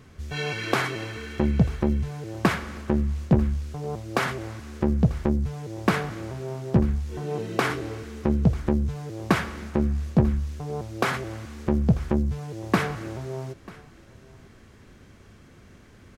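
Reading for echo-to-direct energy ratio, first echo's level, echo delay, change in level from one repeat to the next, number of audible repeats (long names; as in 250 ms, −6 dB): −21.5 dB, −21.5 dB, 942 ms, repeats not evenly spaced, 1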